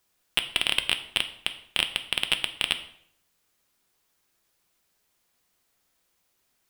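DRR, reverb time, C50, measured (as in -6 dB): 8.0 dB, 0.65 s, 13.0 dB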